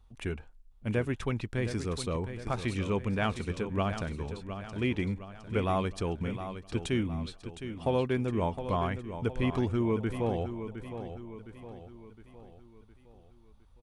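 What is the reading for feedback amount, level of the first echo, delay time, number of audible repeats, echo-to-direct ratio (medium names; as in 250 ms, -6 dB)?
48%, -10.0 dB, 712 ms, 4, -9.0 dB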